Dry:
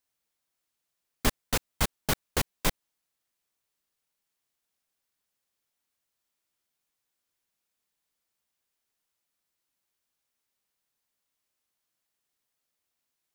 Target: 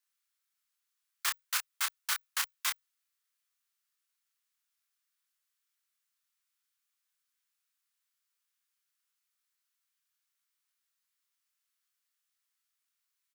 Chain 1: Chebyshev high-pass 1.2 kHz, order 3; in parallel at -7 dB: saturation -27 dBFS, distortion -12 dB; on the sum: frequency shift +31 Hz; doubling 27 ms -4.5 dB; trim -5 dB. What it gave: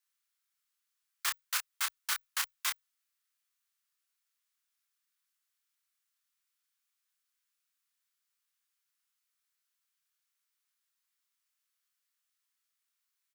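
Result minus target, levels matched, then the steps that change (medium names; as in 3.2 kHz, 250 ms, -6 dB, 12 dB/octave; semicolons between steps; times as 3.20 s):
saturation: distortion +14 dB
change: saturation -16.5 dBFS, distortion -26 dB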